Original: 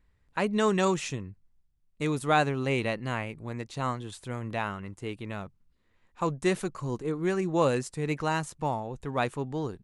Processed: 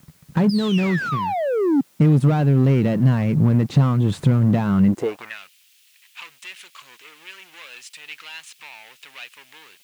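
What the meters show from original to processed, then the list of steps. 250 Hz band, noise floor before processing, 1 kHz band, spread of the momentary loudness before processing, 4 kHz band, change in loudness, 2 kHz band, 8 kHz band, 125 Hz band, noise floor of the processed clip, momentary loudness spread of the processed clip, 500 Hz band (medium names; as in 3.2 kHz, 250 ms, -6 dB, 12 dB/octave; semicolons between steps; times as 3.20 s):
+11.5 dB, -69 dBFS, +1.0 dB, 13 LU, +4.5 dB, +11.5 dB, +2.0 dB, no reading, +15.5 dB, -57 dBFS, 21 LU, +3.5 dB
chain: painted sound fall, 0.49–1.81 s, 260–5200 Hz -24 dBFS; compression 10:1, threshold -39 dBFS, peak gain reduction 21 dB; waveshaping leveller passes 5; RIAA curve playback; word length cut 10-bit, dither triangular; high-pass sweep 160 Hz -> 2.7 kHz, 4.85–5.39 s; trim +2.5 dB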